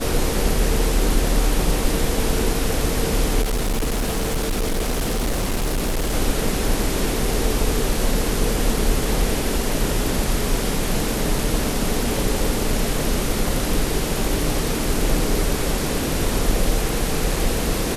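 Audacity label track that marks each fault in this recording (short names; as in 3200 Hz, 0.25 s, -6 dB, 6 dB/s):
3.410000	6.140000	clipped -18 dBFS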